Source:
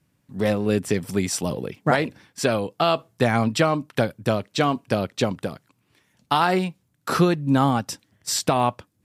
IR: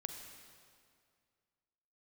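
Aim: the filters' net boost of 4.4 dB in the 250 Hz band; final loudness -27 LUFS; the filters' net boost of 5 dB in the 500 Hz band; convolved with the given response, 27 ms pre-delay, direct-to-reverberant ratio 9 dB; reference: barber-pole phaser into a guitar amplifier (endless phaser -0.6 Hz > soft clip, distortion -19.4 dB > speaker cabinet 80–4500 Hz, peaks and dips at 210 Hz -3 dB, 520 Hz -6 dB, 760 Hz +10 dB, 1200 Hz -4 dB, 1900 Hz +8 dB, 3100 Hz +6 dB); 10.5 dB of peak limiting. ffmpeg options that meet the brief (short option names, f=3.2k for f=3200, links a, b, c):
-filter_complex "[0:a]equalizer=f=250:t=o:g=5.5,equalizer=f=500:t=o:g=5.5,alimiter=limit=-12.5dB:level=0:latency=1,asplit=2[a][b];[1:a]atrim=start_sample=2205,adelay=27[c];[b][c]afir=irnorm=-1:irlink=0,volume=-7dB[d];[a][d]amix=inputs=2:normalize=0,asplit=2[e][f];[f]afreqshift=-0.6[g];[e][g]amix=inputs=2:normalize=1,asoftclip=threshold=-17dB,highpass=80,equalizer=f=210:t=q:w=4:g=-3,equalizer=f=520:t=q:w=4:g=-6,equalizer=f=760:t=q:w=4:g=10,equalizer=f=1.2k:t=q:w=4:g=-4,equalizer=f=1.9k:t=q:w=4:g=8,equalizer=f=3.1k:t=q:w=4:g=6,lowpass=f=4.5k:w=0.5412,lowpass=f=4.5k:w=1.3066,volume=1dB"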